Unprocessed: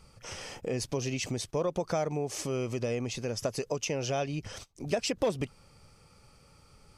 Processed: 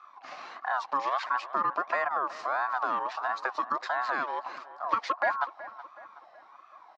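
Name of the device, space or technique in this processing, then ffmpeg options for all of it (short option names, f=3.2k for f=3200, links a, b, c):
voice changer toy: -filter_complex "[0:a]aeval=exprs='val(0)*sin(2*PI*960*n/s+960*0.3/1.5*sin(2*PI*1.5*n/s))':c=same,highpass=420,equalizer=f=440:t=q:w=4:g=-7,equalizer=f=710:t=q:w=4:g=5,equalizer=f=1.1k:t=q:w=4:g=9,equalizer=f=3.4k:t=q:w=4:g=-8,lowpass=f=4k:w=0.5412,lowpass=f=4k:w=1.3066,asettb=1/sr,asplit=3[a][b][c];[a]atrim=end=0.994[d];[b]atrim=start=0.99:end=1.44,asetpts=PTS-STARTPTS,afade=t=in:d=0.004:c=qsin,afade=t=out:st=0.446:d=0.004:c=qsin,equalizer=f=2.5k:t=o:w=0.89:g=5[e];[c]atrim=start=1.436[f];[d][e]acrossfade=d=0.004:c1=hsin:c2=qsin[g];[g][f]acrossfade=d=0.004:c1=qsin:c2=hsin,asplit=2[h][i];[i]adelay=373,lowpass=f=2.7k:p=1,volume=-15.5dB,asplit=2[j][k];[k]adelay=373,lowpass=f=2.7k:p=1,volume=0.51,asplit=2[l][m];[m]adelay=373,lowpass=f=2.7k:p=1,volume=0.51,asplit=2[n][o];[o]adelay=373,lowpass=f=2.7k:p=1,volume=0.51,asplit=2[p][q];[q]adelay=373,lowpass=f=2.7k:p=1,volume=0.51[r];[h][j][l][n][p][r]amix=inputs=6:normalize=0,volume=2dB"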